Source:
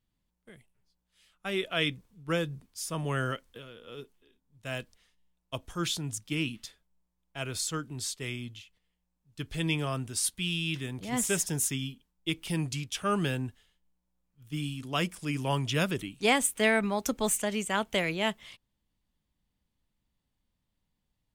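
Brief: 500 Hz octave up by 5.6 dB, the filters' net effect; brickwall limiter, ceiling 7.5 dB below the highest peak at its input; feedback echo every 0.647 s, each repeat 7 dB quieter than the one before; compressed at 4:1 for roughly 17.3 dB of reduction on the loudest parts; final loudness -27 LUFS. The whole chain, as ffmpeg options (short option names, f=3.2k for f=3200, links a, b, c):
-af "equalizer=f=500:t=o:g=7,acompressor=threshold=-39dB:ratio=4,alimiter=level_in=9dB:limit=-24dB:level=0:latency=1,volume=-9dB,aecho=1:1:647|1294|1941|2588|3235:0.447|0.201|0.0905|0.0407|0.0183,volume=16.5dB"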